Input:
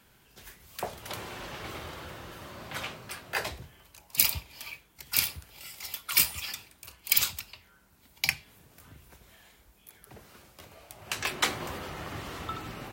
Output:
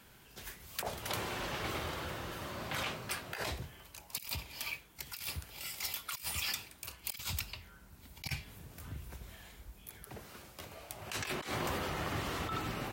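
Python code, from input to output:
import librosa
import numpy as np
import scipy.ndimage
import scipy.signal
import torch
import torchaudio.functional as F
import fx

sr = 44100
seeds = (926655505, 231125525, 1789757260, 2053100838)

y = fx.over_compress(x, sr, threshold_db=-37.0, ratio=-1.0)
y = fx.low_shelf(y, sr, hz=150.0, db=10.0, at=(7.03, 10.03))
y = F.gain(torch.from_numpy(y), -2.0).numpy()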